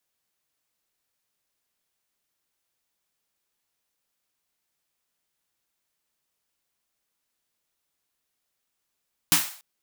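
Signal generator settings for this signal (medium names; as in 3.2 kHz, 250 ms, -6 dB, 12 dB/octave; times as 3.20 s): snare drum length 0.29 s, tones 170 Hz, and 300 Hz, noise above 730 Hz, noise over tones 10 dB, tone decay 0.21 s, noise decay 0.46 s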